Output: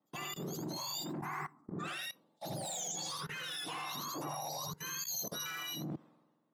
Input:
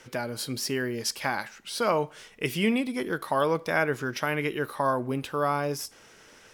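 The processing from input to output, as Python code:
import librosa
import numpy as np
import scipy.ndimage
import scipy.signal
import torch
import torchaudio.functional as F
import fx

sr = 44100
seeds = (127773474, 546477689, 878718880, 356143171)

y = fx.octave_mirror(x, sr, pivot_hz=1300.0)
y = fx.fixed_phaser(y, sr, hz=1300.0, stages=4, at=(1.13, 1.84))
y = fx.band_shelf(y, sr, hz=2100.0, db=-14.0, octaves=1.7, at=(4.1, 5.46))
y = 10.0 ** (-27.0 / 20.0) * np.tanh(y / 10.0 ** (-27.0 / 20.0))
y = scipy.signal.sosfilt(scipy.signal.butter(4, 130.0, 'highpass', fs=sr, output='sos'), y)
y = fx.low_shelf(y, sr, hz=420.0, db=-3.0)
y = y + 10.0 ** (-3.0 / 20.0) * np.pad(y, (int(80 * sr / 1000.0), 0))[:len(y)]
y = fx.level_steps(y, sr, step_db=20)
y = fx.band_widen(y, sr, depth_pct=100)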